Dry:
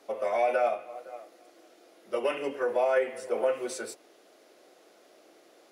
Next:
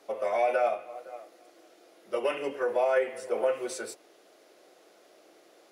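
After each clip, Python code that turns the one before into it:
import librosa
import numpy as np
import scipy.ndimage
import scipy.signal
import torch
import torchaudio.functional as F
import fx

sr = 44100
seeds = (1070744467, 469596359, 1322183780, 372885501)

y = fx.peak_eq(x, sr, hz=250.0, db=-5.0, octaves=0.25)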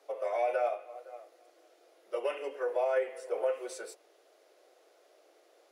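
y = fx.ladder_highpass(x, sr, hz=350.0, resonance_pct=30)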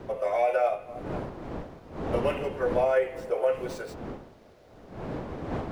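y = scipy.ndimage.median_filter(x, 5, mode='constant')
y = fx.dmg_wind(y, sr, seeds[0], corner_hz=500.0, level_db=-43.0)
y = F.gain(torch.from_numpy(y), 5.5).numpy()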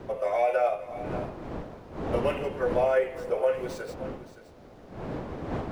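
y = x + 10.0 ** (-14.5 / 20.0) * np.pad(x, (int(570 * sr / 1000.0), 0))[:len(x)]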